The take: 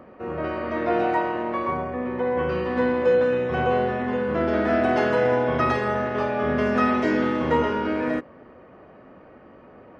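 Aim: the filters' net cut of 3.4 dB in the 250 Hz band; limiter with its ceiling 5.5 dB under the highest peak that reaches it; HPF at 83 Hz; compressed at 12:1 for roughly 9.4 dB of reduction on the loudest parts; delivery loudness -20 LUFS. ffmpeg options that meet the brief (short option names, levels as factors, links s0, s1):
-af "highpass=83,equalizer=f=250:t=o:g=-4,acompressor=threshold=0.0501:ratio=12,volume=3.76,alimiter=limit=0.266:level=0:latency=1"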